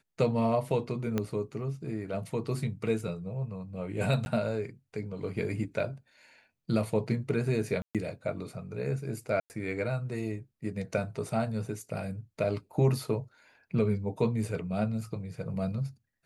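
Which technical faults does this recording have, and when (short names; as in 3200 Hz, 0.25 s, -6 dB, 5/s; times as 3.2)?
1.18 pop -16 dBFS
4.25–4.26 gap
7.82–7.95 gap 0.127 s
9.4–9.5 gap 99 ms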